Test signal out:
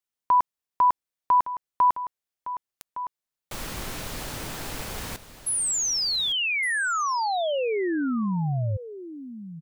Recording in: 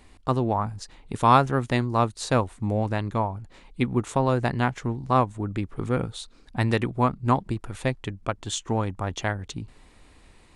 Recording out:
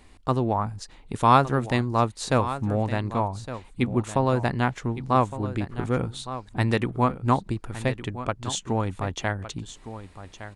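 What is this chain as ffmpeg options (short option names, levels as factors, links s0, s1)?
-af "aecho=1:1:1162:0.224"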